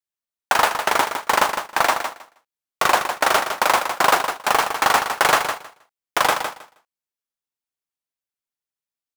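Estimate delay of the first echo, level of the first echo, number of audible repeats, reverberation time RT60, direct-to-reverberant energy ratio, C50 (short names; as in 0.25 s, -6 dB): 0.158 s, -8.0 dB, 2, none, none, none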